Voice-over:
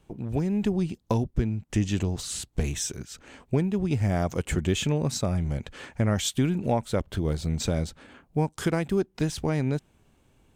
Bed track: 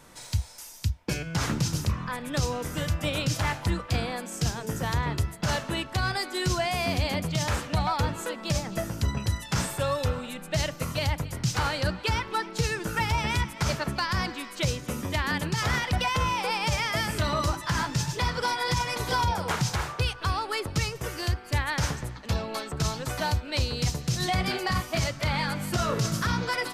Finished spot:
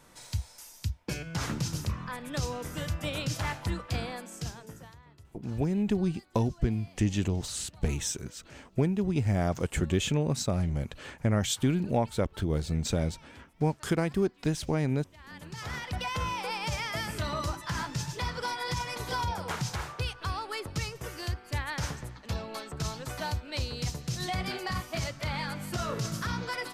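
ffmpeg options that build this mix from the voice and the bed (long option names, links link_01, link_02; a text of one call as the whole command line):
ffmpeg -i stem1.wav -i stem2.wav -filter_complex "[0:a]adelay=5250,volume=-2dB[link_01];[1:a]volume=16.5dB,afade=type=out:start_time=4.05:duration=0.91:silence=0.0749894,afade=type=in:start_time=15.16:duration=1.04:silence=0.0841395[link_02];[link_01][link_02]amix=inputs=2:normalize=0" out.wav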